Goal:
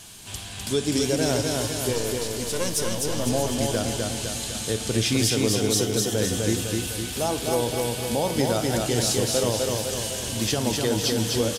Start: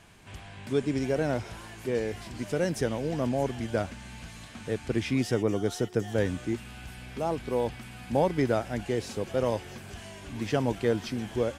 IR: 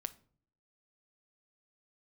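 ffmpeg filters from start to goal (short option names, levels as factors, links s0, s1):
-filter_complex "[0:a]asettb=1/sr,asplit=3[s0][s1][s2];[s0]atrim=end=1.934[s3];[s1]atrim=start=1.93:end=3.27,asetpts=PTS-STARTPTS,afade=t=in:d=0.004:c=qsin,afade=t=out:st=1.336:d=0.004:c=qsin,aeval=exprs='(tanh(10*val(0)+0.75)-tanh(0.75))/10':c=same[s4];[s2]atrim=start=3.266[s5];[s3][s4]acrossfade=d=0.004:c1=hsin:c2=qsin[s6];[s6][s5]acrossfade=d=0.004:c1=qsin:c2=hsin,aexciter=amount=2.9:drive=8.7:freq=3100[s7];[1:a]atrim=start_sample=2205,asetrate=30429,aresample=44100[s8];[s7][s8]afir=irnorm=-1:irlink=0,alimiter=limit=0.133:level=0:latency=1:release=163,aecho=1:1:253|506|759|1012|1265|1518|1771|2024:0.708|0.389|0.214|0.118|0.0648|0.0356|0.0196|0.0108,volume=1.68"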